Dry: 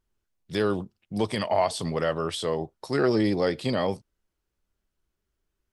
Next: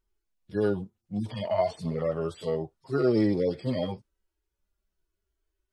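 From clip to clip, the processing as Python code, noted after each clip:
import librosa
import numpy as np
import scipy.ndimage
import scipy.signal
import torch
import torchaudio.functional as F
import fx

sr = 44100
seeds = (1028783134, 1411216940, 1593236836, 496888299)

y = fx.hpss_only(x, sr, part='harmonic')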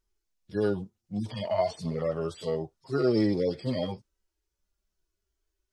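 y = fx.peak_eq(x, sr, hz=5800.0, db=6.5, octaves=1.0)
y = y * librosa.db_to_amplitude(-1.0)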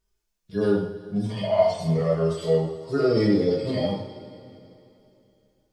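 y = fx.rev_double_slope(x, sr, seeds[0], early_s=0.54, late_s=3.0, knee_db=-16, drr_db=-4.0)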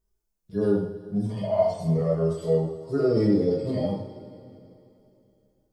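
y = fx.peak_eq(x, sr, hz=2900.0, db=-11.5, octaves=2.6)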